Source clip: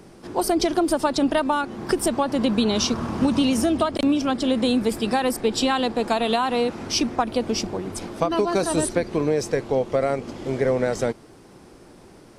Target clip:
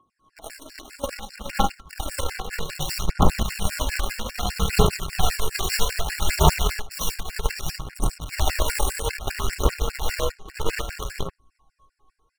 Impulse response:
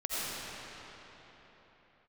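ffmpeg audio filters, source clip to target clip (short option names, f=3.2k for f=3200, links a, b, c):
-filter_complex "[0:a]acompressor=threshold=-26dB:ratio=3,afreqshift=-64,lowshelf=f=170:g=-9,aeval=exprs='val(0)+0.0158*sin(2*PI*1100*n/s)':c=same,dynaudnorm=f=790:g=5:m=4dB,aeval=exprs='(mod(7.94*val(0)+1,2)-1)/7.94':c=same,aecho=1:1:71:0.133[a];[1:a]atrim=start_sample=2205,afade=t=out:st=0.3:d=0.01,atrim=end_sample=13671,asetrate=57330,aresample=44100[b];[a][b]afir=irnorm=-1:irlink=0,aphaser=in_gain=1:out_gain=1:delay=2.7:decay=0.6:speed=0.62:type=triangular,aeval=exprs='0.531*(cos(1*acos(clip(val(0)/0.531,-1,1)))-cos(1*PI/2))+0.0473*(cos(3*acos(clip(val(0)/0.531,-1,1)))-cos(3*PI/2))+0.0531*(cos(7*acos(clip(val(0)/0.531,-1,1)))-cos(7*PI/2))':c=same,asubboost=boost=9:cutoff=79,afftfilt=real='re*gt(sin(2*PI*5*pts/sr)*(1-2*mod(floor(b*sr/1024/1400),2)),0)':imag='im*gt(sin(2*PI*5*pts/sr)*(1-2*mod(floor(b*sr/1024/1400),2)),0)':win_size=1024:overlap=0.75,volume=5dB"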